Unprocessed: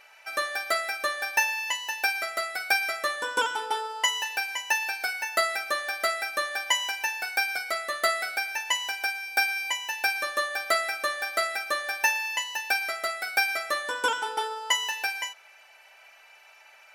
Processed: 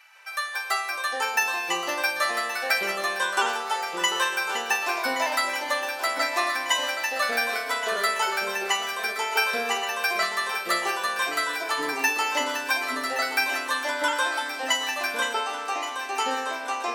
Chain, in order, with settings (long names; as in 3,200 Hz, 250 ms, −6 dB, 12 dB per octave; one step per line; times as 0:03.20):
high-pass filter 850 Hz 24 dB per octave
delay with pitch and tempo change per echo 146 ms, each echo −7 semitones, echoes 3
on a send: feedback echo with a long and a short gap by turns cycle 1,497 ms, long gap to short 3 to 1, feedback 50%, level −12.5 dB